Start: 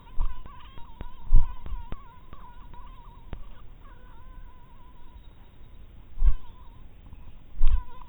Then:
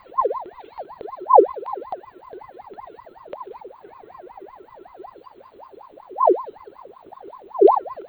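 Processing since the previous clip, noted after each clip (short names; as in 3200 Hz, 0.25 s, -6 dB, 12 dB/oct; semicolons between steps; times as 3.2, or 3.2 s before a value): dynamic EQ 980 Hz, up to -5 dB, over -55 dBFS, Q 0.97; ring modulator with a swept carrier 710 Hz, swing 50%, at 5.3 Hz; gain +3 dB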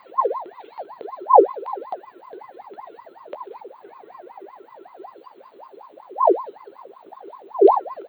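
HPF 240 Hz 12 dB/oct; doubler 15 ms -13 dB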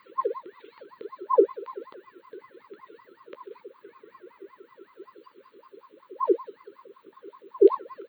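Chebyshev band-stop 450–1200 Hz, order 2; gain -3 dB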